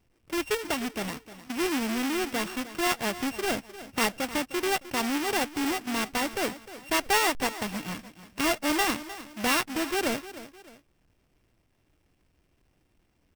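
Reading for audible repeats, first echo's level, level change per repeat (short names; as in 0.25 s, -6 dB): 2, -15.0 dB, -8.5 dB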